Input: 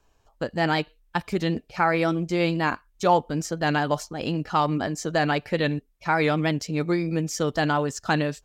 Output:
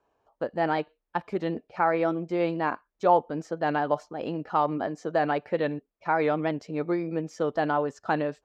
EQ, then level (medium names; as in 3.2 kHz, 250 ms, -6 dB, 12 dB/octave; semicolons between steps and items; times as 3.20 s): band-pass filter 620 Hz, Q 0.75; 0.0 dB